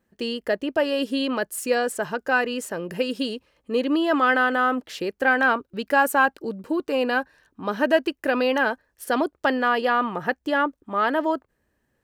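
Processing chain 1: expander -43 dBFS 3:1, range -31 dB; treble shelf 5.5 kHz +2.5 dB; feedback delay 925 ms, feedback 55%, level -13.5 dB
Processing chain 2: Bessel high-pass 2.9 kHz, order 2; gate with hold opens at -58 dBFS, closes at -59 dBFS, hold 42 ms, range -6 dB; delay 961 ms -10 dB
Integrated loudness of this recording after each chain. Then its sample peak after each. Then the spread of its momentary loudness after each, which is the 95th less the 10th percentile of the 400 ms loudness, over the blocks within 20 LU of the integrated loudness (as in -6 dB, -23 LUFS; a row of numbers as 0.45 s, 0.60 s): -23.0 LUFS, -34.0 LUFS; -6.5 dBFS, -17.5 dBFS; 10 LU, 11 LU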